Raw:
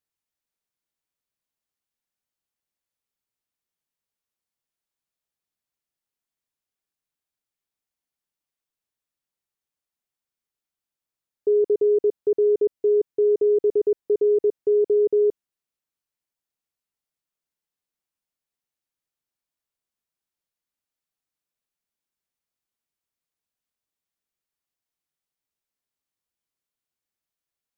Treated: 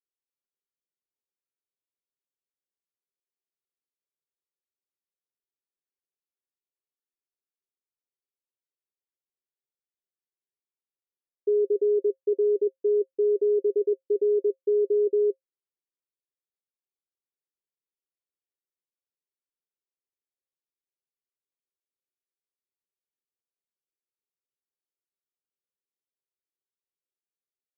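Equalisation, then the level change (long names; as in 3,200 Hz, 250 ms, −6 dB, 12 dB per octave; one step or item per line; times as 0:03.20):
high-pass filter 290 Hz 24 dB per octave
Chebyshev low-pass with heavy ripple 550 Hz, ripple 9 dB
0.0 dB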